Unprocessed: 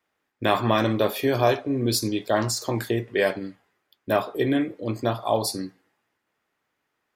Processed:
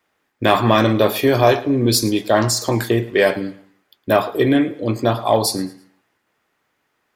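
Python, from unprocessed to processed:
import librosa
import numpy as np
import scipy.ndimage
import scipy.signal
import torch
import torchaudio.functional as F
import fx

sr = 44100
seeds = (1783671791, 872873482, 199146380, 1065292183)

p1 = fx.echo_feedback(x, sr, ms=110, feedback_pct=32, wet_db=-19.5)
p2 = 10.0 ** (-16.5 / 20.0) * np.tanh(p1 / 10.0 ** (-16.5 / 20.0))
p3 = p1 + (p2 * 10.0 ** (-5.0 / 20.0))
y = p3 * 10.0 ** (4.0 / 20.0)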